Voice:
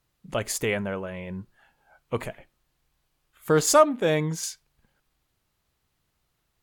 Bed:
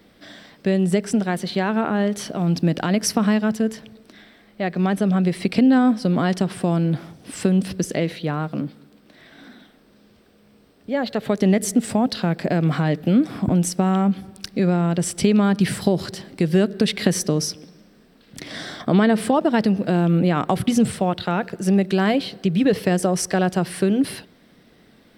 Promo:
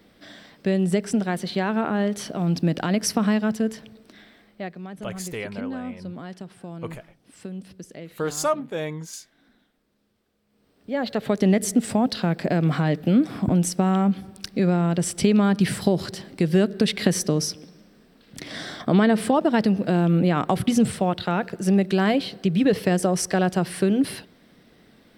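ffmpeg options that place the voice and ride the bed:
ffmpeg -i stem1.wav -i stem2.wav -filter_complex "[0:a]adelay=4700,volume=-6dB[link_01];[1:a]volume=13dB,afade=type=out:start_time=4.38:duration=0.42:silence=0.188365,afade=type=in:start_time=10.47:duration=0.62:silence=0.16788[link_02];[link_01][link_02]amix=inputs=2:normalize=0" out.wav

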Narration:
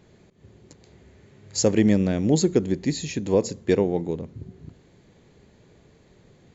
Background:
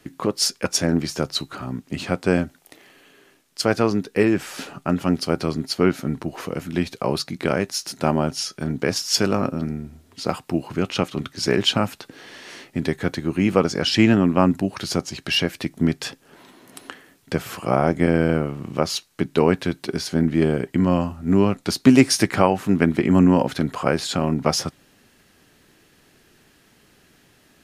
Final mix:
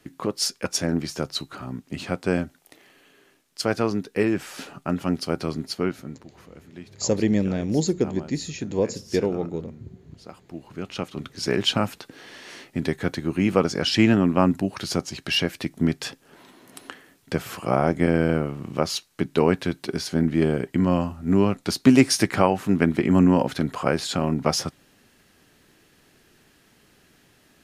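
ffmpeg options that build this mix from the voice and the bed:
ffmpeg -i stem1.wav -i stem2.wav -filter_complex "[0:a]adelay=5450,volume=-2.5dB[link_01];[1:a]volume=12.5dB,afade=type=out:start_time=5.61:duration=0.65:silence=0.188365,afade=type=in:start_time=10.42:duration=1.39:silence=0.149624[link_02];[link_01][link_02]amix=inputs=2:normalize=0" out.wav

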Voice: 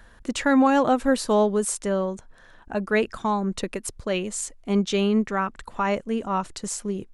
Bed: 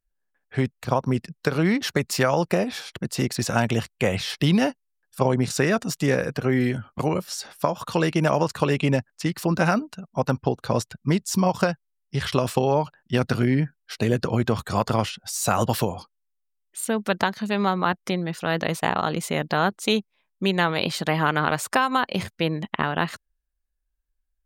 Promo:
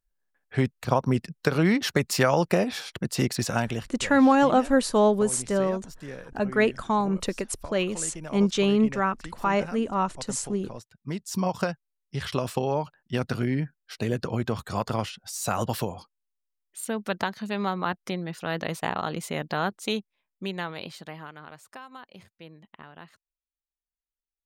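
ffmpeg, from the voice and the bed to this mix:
ffmpeg -i stem1.wav -i stem2.wav -filter_complex "[0:a]adelay=3650,volume=0dB[link_01];[1:a]volume=12dB,afade=type=out:start_time=3.28:duration=0.75:silence=0.133352,afade=type=in:start_time=10.93:duration=0.5:silence=0.237137,afade=type=out:start_time=19.73:duration=1.6:silence=0.141254[link_02];[link_01][link_02]amix=inputs=2:normalize=0" out.wav

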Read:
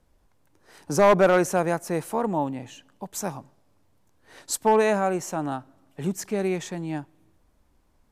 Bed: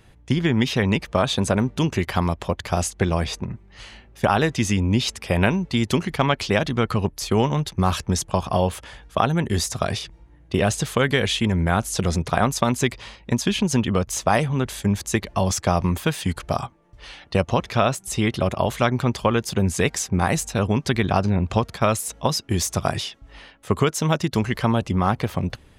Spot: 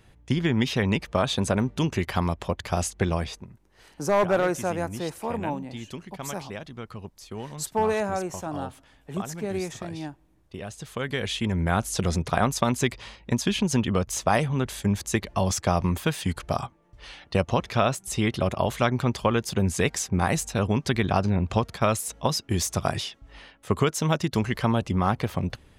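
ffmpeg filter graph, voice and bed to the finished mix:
ffmpeg -i stem1.wav -i stem2.wav -filter_complex "[0:a]adelay=3100,volume=-4.5dB[link_01];[1:a]volume=10.5dB,afade=type=out:start_time=3.12:duration=0.37:silence=0.211349,afade=type=in:start_time=10.74:duration=1.04:silence=0.199526[link_02];[link_01][link_02]amix=inputs=2:normalize=0" out.wav

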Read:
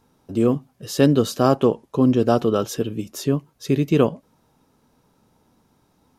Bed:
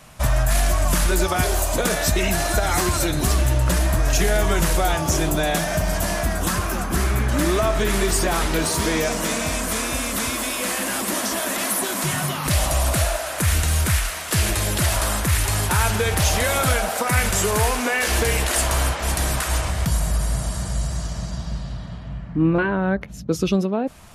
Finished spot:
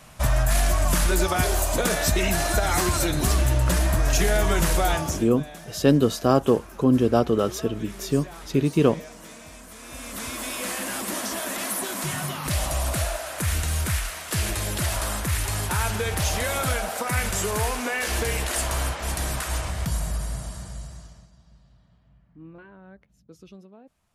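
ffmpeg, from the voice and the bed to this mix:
ffmpeg -i stem1.wav -i stem2.wav -filter_complex "[0:a]adelay=4850,volume=-2dB[link_01];[1:a]volume=12.5dB,afade=type=out:start_time=4.95:duration=0.31:silence=0.125893,afade=type=in:start_time=9.78:duration=0.77:silence=0.188365,afade=type=out:start_time=19.99:duration=1.31:silence=0.0891251[link_02];[link_01][link_02]amix=inputs=2:normalize=0" out.wav

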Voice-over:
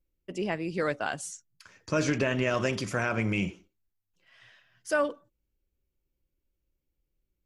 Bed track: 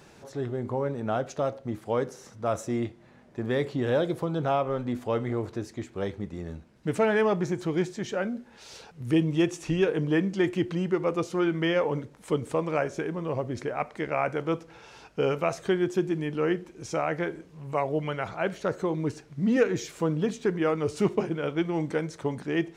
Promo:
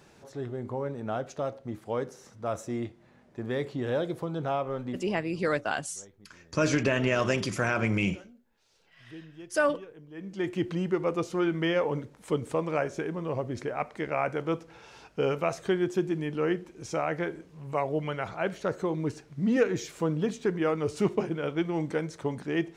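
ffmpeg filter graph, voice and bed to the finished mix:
ffmpeg -i stem1.wav -i stem2.wav -filter_complex "[0:a]adelay=4650,volume=1.5dB[link_01];[1:a]volume=17dB,afade=type=out:start_time=4.88:duration=0.23:silence=0.11885,afade=type=in:start_time=10.14:duration=0.52:silence=0.0891251[link_02];[link_01][link_02]amix=inputs=2:normalize=0" out.wav

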